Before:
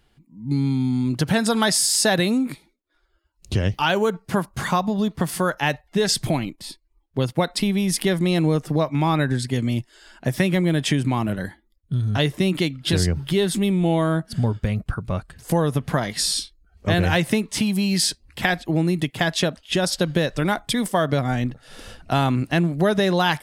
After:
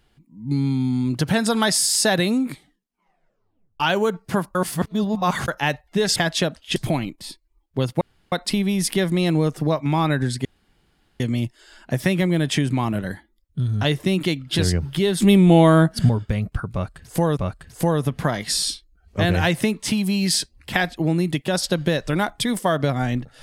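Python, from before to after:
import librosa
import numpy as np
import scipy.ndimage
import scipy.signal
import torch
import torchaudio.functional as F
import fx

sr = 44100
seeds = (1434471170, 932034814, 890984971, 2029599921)

y = fx.edit(x, sr, fx.tape_stop(start_s=2.51, length_s=1.29),
    fx.reverse_span(start_s=4.55, length_s=0.93),
    fx.insert_room_tone(at_s=7.41, length_s=0.31),
    fx.insert_room_tone(at_s=9.54, length_s=0.75),
    fx.clip_gain(start_s=13.56, length_s=0.87, db=7.0),
    fx.repeat(start_s=15.06, length_s=0.65, count=2),
    fx.move(start_s=19.17, length_s=0.6, to_s=6.16), tone=tone)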